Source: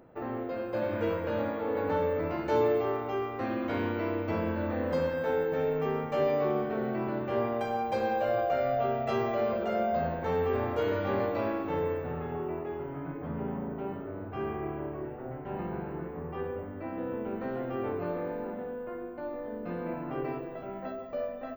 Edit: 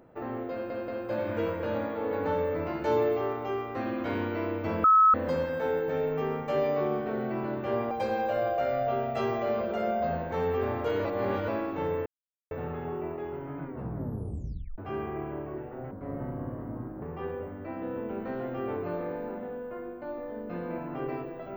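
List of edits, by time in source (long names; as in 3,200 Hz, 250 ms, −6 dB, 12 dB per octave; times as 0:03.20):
0:00.52: stutter 0.18 s, 3 plays
0:04.48–0:04.78: beep over 1,290 Hz −15.5 dBFS
0:07.55–0:07.83: remove
0:10.97–0:11.40: reverse
0:11.98: splice in silence 0.45 s
0:13.09: tape stop 1.16 s
0:15.38–0:16.18: play speed 72%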